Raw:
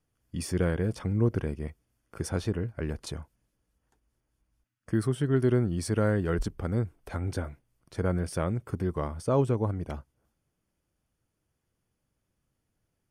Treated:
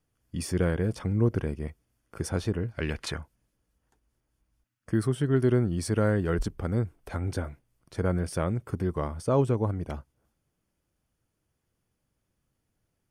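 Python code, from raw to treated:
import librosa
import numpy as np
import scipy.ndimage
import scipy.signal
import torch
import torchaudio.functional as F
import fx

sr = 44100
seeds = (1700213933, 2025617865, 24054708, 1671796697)

y = fx.peak_eq(x, sr, hz=fx.line((2.7, 4600.0), (3.16, 1500.0)), db=14.5, octaves=1.7, at=(2.7, 3.16), fade=0.02)
y = y * 10.0 ** (1.0 / 20.0)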